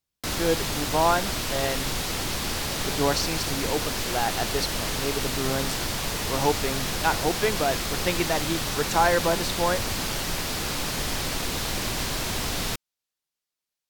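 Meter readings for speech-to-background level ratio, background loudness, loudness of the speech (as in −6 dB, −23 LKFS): −0.5 dB, −27.5 LKFS, −28.0 LKFS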